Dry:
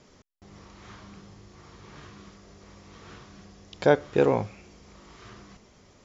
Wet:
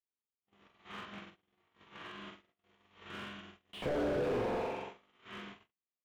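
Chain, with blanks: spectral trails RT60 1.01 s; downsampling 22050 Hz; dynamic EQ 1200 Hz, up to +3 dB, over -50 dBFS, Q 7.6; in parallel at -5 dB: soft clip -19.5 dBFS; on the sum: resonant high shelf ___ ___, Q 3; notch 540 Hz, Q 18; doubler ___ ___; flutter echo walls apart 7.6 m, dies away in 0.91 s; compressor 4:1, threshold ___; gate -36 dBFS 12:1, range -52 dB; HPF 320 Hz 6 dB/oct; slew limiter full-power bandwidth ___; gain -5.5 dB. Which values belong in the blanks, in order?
4000 Hz, -9 dB, 24 ms, -13.5 dB, -20 dBFS, 28 Hz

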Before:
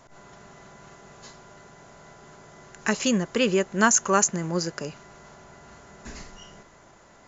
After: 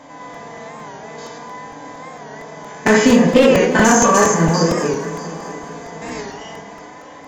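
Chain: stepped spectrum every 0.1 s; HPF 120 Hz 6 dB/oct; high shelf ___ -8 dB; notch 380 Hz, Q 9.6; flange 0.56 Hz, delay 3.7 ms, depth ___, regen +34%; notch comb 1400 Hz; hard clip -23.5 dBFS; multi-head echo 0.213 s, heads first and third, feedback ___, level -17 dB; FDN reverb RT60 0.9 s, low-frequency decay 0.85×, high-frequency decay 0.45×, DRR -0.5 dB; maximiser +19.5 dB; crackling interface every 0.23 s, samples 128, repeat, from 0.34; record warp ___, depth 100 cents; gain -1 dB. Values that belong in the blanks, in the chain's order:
5300 Hz, 1.1 ms, 49%, 45 rpm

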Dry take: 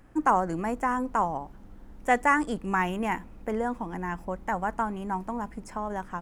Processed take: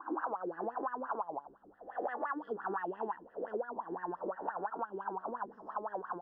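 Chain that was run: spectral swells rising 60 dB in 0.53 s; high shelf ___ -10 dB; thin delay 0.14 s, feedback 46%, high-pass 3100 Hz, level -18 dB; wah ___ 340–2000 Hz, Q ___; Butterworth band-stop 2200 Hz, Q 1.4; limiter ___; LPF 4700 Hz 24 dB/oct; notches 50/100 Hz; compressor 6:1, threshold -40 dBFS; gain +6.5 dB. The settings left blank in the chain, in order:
3600 Hz, 5.8 Hz, 6.8, -23 dBFS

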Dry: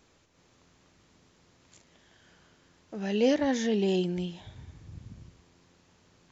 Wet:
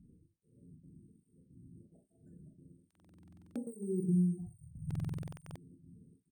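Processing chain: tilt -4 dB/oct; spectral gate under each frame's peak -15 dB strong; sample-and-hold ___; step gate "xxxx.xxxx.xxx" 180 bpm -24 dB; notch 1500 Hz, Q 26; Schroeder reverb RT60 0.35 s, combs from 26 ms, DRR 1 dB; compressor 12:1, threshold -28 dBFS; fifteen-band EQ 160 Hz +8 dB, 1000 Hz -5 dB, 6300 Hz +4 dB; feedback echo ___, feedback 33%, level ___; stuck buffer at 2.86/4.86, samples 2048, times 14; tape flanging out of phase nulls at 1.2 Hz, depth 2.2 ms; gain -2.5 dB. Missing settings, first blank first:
5×, 0.119 s, -23.5 dB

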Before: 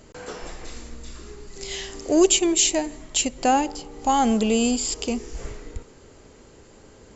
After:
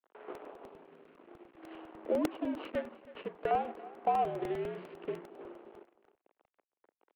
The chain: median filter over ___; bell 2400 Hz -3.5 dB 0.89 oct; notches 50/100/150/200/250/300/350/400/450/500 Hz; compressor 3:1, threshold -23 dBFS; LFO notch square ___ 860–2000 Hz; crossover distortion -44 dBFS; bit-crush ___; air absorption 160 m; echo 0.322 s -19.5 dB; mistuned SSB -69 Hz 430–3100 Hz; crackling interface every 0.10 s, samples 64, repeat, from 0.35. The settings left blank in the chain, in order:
25 samples, 0.57 Hz, 10-bit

